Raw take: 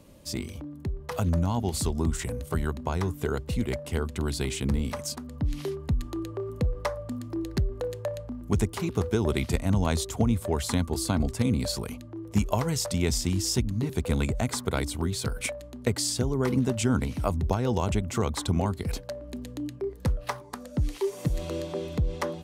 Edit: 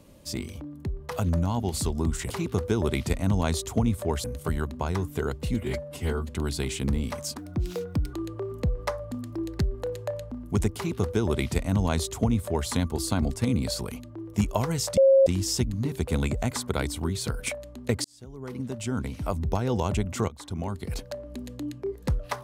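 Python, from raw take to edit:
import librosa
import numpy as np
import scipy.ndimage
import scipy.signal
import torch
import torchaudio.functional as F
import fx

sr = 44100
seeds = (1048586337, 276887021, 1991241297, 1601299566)

y = fx.edit(x, sr, fx.stretch_span(start_s=3.6, length_s=0.5, factor=1.5),
    fx.speed_span(start_s=5.19, length_s=0.92, speed=1.22),
    fx.duplicate(start_s=8.73, length_s=1.94, to_s=2.3),
    fx.bleep(start_s=12.95, length_s=0.29, hz=540.0, db=-13.5),
    fx.fade_in_span(start_s=16.02, length_s=1.6),
    fx.fade_in_from(start_s=18.26, length_s=0.8, floor_db=-17.5), tone=tone)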